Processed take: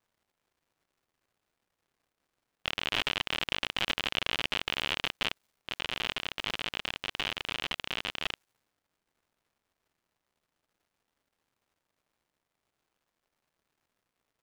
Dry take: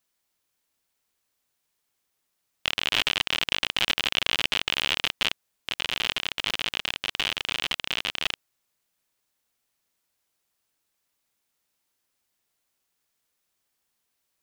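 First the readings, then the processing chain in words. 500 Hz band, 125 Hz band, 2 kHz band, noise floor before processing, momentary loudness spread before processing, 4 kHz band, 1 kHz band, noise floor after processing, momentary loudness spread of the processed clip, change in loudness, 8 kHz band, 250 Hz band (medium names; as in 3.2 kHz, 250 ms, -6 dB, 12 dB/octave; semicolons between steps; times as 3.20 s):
-2.5 dB, -2.0 dB, -5.5 dB, -78 dBFS, 6 LU, -7.0 dB, -3.0 dB, under -85 dBFS, 6 LU, -6.5 dB, -9.5 dB, -2.0 dB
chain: treble shelf 2.7 kHz -8.5 dB; crackle 350 per s -58 dBFS; tape noise reduction on one side only decoder only; trim -2 dB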